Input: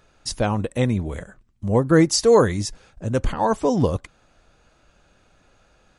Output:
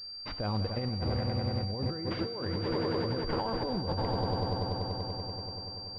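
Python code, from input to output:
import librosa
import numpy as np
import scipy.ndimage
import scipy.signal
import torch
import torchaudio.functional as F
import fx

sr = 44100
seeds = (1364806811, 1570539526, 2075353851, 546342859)

y = fx.peak_eq(x, sr, hz=94.0, db=9.0, octaves=0.27)
y = fx.echo_swell(y, sr, ms=96, loudest=5, wet_db=-13.0)
y = fx.over_compress(y, sr, threshold_db=-22.0, ratio=-1.0)
y = fx.comb_fb(y, sr, f0_hz=190.0, decay_s=1.3, harmonics='all', damping=0.0, mix_pct=70)
y = fx.pwm(y, sr, carrier_hz=4700.0)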